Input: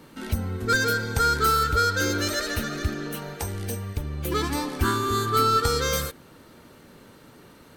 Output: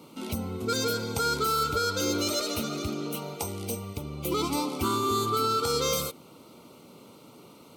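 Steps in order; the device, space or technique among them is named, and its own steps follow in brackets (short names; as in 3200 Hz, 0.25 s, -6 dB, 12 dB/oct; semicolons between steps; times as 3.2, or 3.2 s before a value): PA system with an anti-feedback notch (HPF 140 Hz 12 dB/oct; Butterworth band-stop 1700 Hz, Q 2.1; limiter -17.5 dBFS, peak gain reduction 5.5 dB)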